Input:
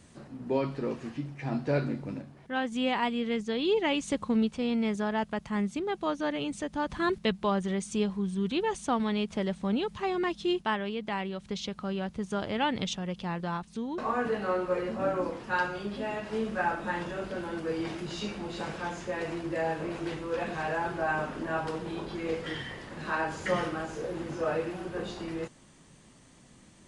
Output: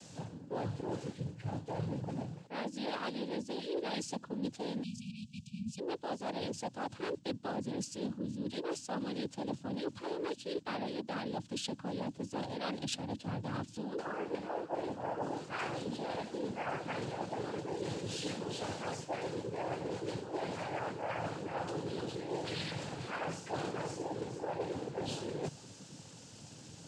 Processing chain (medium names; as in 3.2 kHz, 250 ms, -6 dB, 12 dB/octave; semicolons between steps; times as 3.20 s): ten-band graphic EQ 250 Hz -8 dB, 1 kHz -7 dB, 2 kHz -10 dB; noise-vocoded speech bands 8; reverse; compression 6:1, threshold -46 dBFS, peak gain reduction 20 dB; reverse; spectral selection erased 4.83–5.79 s, 250–2300 Hz; trim +10 dB